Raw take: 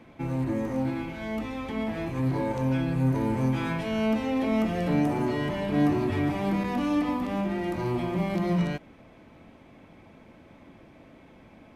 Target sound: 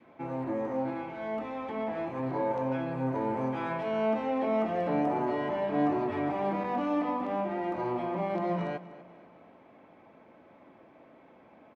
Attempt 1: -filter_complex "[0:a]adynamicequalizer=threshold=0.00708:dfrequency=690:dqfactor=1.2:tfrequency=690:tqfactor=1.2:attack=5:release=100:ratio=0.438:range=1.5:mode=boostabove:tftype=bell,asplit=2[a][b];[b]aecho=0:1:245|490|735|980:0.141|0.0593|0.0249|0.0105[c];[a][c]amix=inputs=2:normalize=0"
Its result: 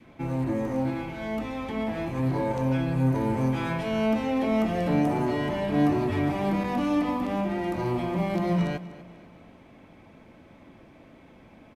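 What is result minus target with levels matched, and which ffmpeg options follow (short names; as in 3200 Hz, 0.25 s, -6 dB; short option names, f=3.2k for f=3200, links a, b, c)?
1000 Hz band -4.0 dB
-filter_complex "[0:a]adynamicequalizer=threshold=0.00708:dfrequency=690:dqfactor=1.2:tfrequency=690:tqfactor=1.2:attack=5:release=100:ratio=0.438:range=1.5:mode=boostabove:tftype=bell,bandpass=f=770:t=q:w=0.71:csg=0,asplit=2[a][b];[b]aecho=0:1:245|490|735|980:0.141|0.0593|0.0249|0.0105[c];[a][c]amix=inputs=2:normalize=0"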